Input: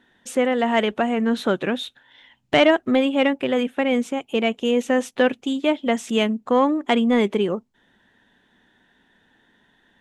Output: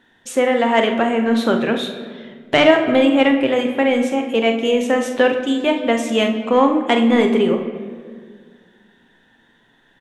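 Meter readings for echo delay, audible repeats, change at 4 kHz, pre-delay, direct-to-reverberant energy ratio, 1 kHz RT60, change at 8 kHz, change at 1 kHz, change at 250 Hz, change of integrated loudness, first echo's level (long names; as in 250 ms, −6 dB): 44 ms, 1, +4.0 dB, 6 ms, 4.0 dB, 1.6 s, +4.0 dB, +4.5 dB, +4.0 dB, +4.5 dB, −9.0 dB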